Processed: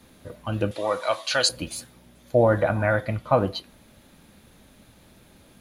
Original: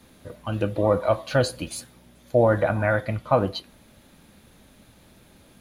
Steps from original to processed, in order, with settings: 0.71–1.49 s: frequency weighting ITU-R 468

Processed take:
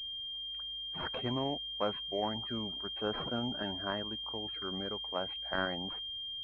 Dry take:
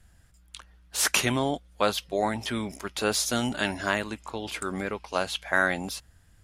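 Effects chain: loudest bins only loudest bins 64; class-D stage that switches slowly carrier 3.2 kHz; trim -8 dB

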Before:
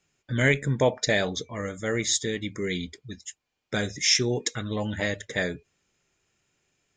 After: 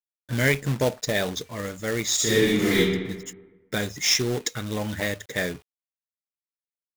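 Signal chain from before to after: 0.60–1.15 s: peaking EQ 2 kHz -7.5 dB 2.5 oct; companded quantiser 4-bit; 2.15–2.77 s: reverb throw, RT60 1.2 s, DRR -9.5 dB

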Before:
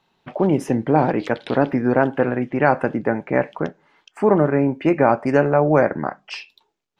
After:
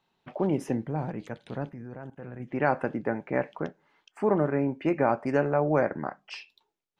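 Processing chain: 0.87–2.48 s: time-frequency box 220–5900 Hz -9 dB; 1.69–2.40 s: level held to a coarse grid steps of 16 dB; trim -8.5 dB

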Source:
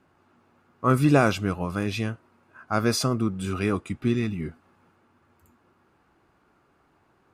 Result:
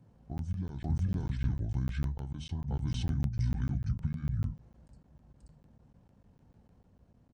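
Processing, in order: compression 20:1, threshold -32 dBFS, peak gain reduction 19 dB; dynamic bell 760 Hz, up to -6 dB, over -53 dBFS, Q 1.2; hum notches 60/120/180/240/300/360 Hz; reverse echo 525 ms -4 dB; pitch shift -8 st; FFT filter 120 Hz 0 dB, 840 Hz -18 dB, 4.8 kHz -12 dB; crackling interface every 0.15 s, samples 512, zero, from 0.38 s; trim +8 dB

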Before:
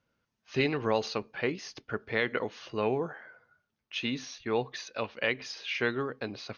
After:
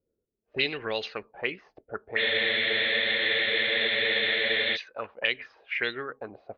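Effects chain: ten-band graphic EQ 125 Hz -9 dB, 250 Hz -7 dB, 1 kHz -8 dB; spectral freeze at 2.19 s, 2.55 s; touch-sensitive low-pass 400–3500 Hz up, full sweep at -28.5 dBFS

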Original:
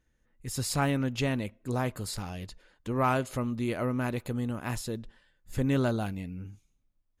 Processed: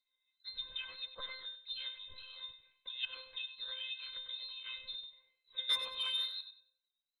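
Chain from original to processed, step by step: frequency inversion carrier 3.9 kHz; wow and flutter 53 cents; feedback comb 520 Hz, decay 0.33 s, mix 100%; low-pass that closes with the level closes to 1 kHz, closed at -38.5 dBFS; 5.69–6.41 s: overdrive pedal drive 22 dB, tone 2.6 kHz, clips at -27.5 dBFS; harmonic-percussive split percussive +7 dB; on a send: feedback delay 96 ms, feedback 24%, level -11 dB; on the sum: trim +6 dB

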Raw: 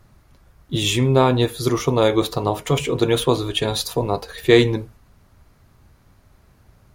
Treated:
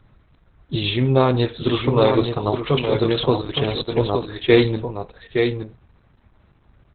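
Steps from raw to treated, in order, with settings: delay 868 ms -6 dB; whistle 6.5 kHz -36 dBFS; Opus 8 kbps 48 kHz

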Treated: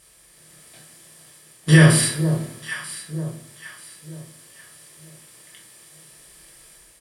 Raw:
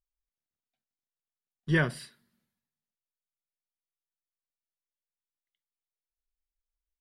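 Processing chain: spectral levelling over time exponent 0.6; treble shelf 2.8 kHz +8 dB; echo whose repeats swap between lows and highs 469 ms, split 970 Hz, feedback 56%, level -12 dB; reverberation, pre-delay 5 ms, DRR -2.5 dB; level rider gain up to 5 dB; high-pass 41 Hz; peaking EQ 9 kHz +11.5 dB 1.2 oct; band-stop 1.5 kHz, Q 7.9; doubling 32 ms -11 dB; loudness maximiser +5 dB; trim -1 dB

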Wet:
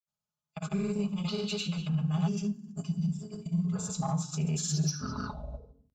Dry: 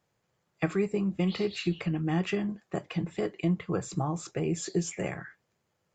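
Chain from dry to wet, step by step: tape stop on the ending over 1.28 s; high-order bell 620 Hz -8 dB; static phaser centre 790 Hz, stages 4; gate -50 dBFS, range -17 dB; bass shelf 78 Hz -9 dB; comb 4.8 ms, depth 74%; FDN reverb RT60 0.56 s, low-frequency decay 1.5×, high-frequency decay 0.95×, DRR 3.5 dB; in parallel at -3 dB: saturation -30 dBFS, distortion -13 dB; on the sum: band-stop 470 Hz, Q 12; granulator, pitch spread up and down by 0 st; on a send: delay 74 ms -18.5 dB; on the sum: time-frequency box 2.28–3.76 s, 420–4600 Hz -13 dB

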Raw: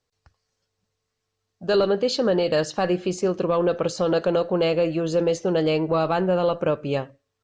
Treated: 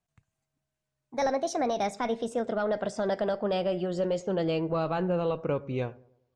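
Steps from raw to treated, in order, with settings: gliding tape speed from 149% -> 85%; tone controls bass +4 dB, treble -4 dB; feedback echo behind a low-pass 102 ms, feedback 44%, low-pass 960 Hz, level -21.5 dB; trim -7.5 dB

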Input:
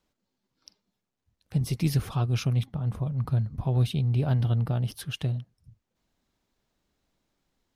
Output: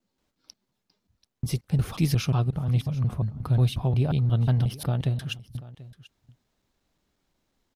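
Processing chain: slices played last to first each 179 ms, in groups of 2; delay 737 ms -19 dB; trim +2 dB

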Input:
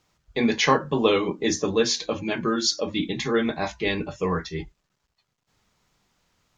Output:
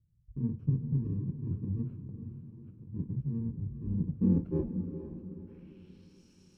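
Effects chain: bit-reversed sample order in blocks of 64 samples; low-pass sweep 120 Hz -> 5.9 kHz, 3.84–6.22 s; 1.94–2.93 s: compression, threshold -49 dBFS, peak gain reduction 18 dB; echo that smears into a reverb 460 ms, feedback 41%, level -9 dB

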